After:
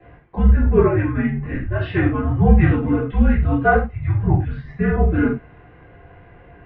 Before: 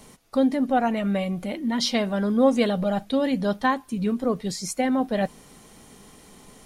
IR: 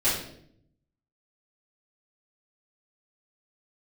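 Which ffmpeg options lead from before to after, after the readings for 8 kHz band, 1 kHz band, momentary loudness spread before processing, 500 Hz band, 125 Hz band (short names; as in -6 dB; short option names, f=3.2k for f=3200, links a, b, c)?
under -40 dB, +2.0 dB, 8 LU, +3.0 dB, +17.0 dB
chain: -filter_complex "[1:a]atrim=start_sample=2205,afade=t=out:st=0.2:d=0.01,atrim=end_sample=9261,asetrate=52920,aresample=44100[a];[0:a][a]afir=irnorm=-1:irlink=0,highpass=f=260:t=q:w=0.5412,highpass=f=260:t=q:w=1.307,lowpass=f=2.5k:t=q:w=0.5176,lowpass=f=2.5k:t=q:w=0.7071,lowpass=f=2.5k:t=q:w=1.932,afreqshift=-330,volume=-3dB"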